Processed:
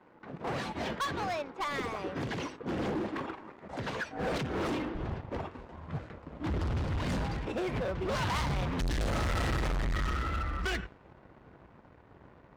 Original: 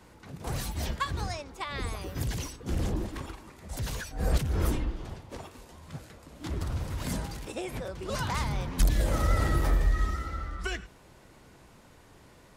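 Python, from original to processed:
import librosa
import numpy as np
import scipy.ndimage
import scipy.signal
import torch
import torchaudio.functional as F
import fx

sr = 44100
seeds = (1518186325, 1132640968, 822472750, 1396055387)

y = fx.highpass(x, sr, hz=fx.steps((0.0, 230.0), (4.95, 48.0)), slope=12)
y = fx.leveller(y, sr, passes=2)
y = fx.env_lowpass(y, sr, base_hz=1500.0, full_db=-13.5)
y = np.clip(y, -10.0 ** (-28.5 / 20.0), 10.0 ** (-28.5 / 20.0))
y = fx.upward_expand(y, sr, threshold_db=-31.0, expansion=1.5)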